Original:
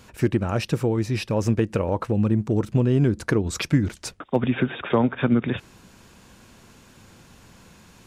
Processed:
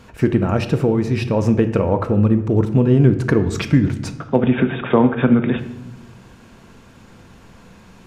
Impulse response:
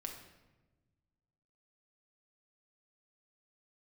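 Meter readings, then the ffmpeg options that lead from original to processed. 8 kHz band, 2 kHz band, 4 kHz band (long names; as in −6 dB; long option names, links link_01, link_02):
−2.5 dB, +3.5 dB, +0.5 dB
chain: -filter_complex "[0:a]highshelf=frequency=3800:gain=-10.5,asplit=2[link_01][link_02];[1:a]atrim=start_sample=2205,asetrate=52920,aresample=44100[link_03];[link_02][link_03]afir=irnorm=-1:irlink=0,volume=4.5dB[link_04];[link_01][link_04]amix=inputs=2:normalize=0"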